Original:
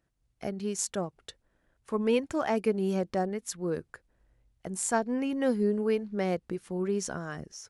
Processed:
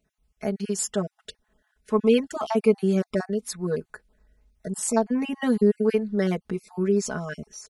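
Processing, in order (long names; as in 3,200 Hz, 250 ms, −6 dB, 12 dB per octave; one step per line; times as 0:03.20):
time-frequency cells dropped at random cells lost 25%
comb filter 4.7 ms, depth 99%
level +2.5 dB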